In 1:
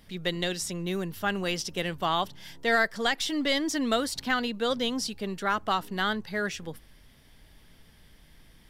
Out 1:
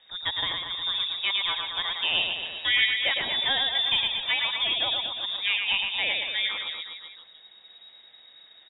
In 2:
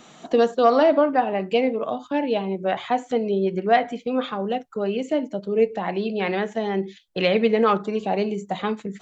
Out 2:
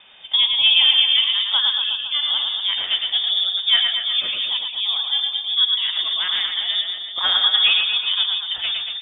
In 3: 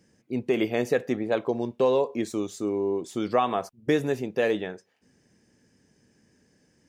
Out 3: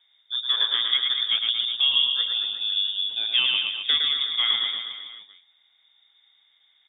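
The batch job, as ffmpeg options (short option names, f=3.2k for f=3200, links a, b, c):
-af "aecho=1:1:110|231|364.1|510.5|671.6:0.631|0.398|0.251|0.158|0.1,lowpass=f=3.2k:t=q:w=0.5098,lowpass=f=3.2k:t=q:w=0.6013,lowpass=f=3.2k:t=q:w=0.9,lowpass=f=3.2k:t=q:w=2.563,afreqshift=-3800"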